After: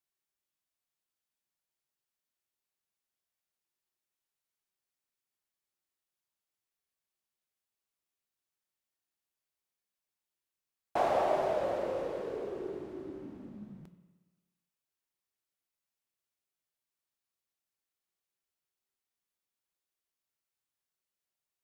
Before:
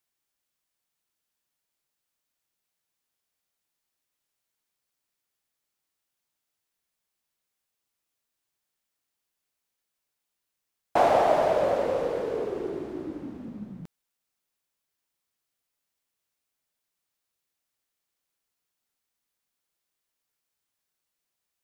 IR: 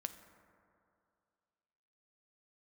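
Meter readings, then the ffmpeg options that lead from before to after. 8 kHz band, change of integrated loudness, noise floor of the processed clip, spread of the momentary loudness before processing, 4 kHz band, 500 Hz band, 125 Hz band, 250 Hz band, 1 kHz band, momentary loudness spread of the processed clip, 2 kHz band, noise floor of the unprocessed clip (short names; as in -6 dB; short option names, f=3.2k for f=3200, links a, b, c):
n/a, -8.0 dB, under -85 dBFS, 19 LU, -8.0 dB, -8.0 dB, -8.0 dB, -7.5 dB, -8.0 dB, 19 LU, -8.0 dB, -84 dBFS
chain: -filter_complex "[1:a]atrim=start_sample=2205,asetrate=83790,aresample=44100[a];[0:a][a]afir=irnorm=-1:irlink=0"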